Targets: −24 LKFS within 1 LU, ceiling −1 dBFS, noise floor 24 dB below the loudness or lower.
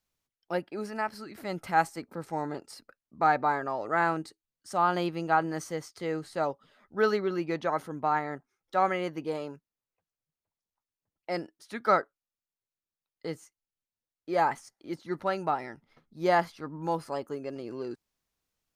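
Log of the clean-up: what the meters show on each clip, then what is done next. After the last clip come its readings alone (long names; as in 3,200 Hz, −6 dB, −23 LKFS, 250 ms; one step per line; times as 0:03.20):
integrated loudness −30.5 LKFS; sample peak −10.0 dBFS; target loudness −24.0 LKFS
→ level +6.5 dB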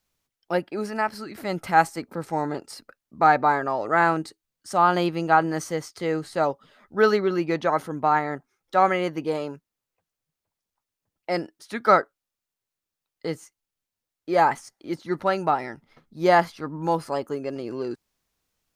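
integrated loudness −24.0 LKFS; sample peak −3.5 dBFS; background noise floor −87 dBFS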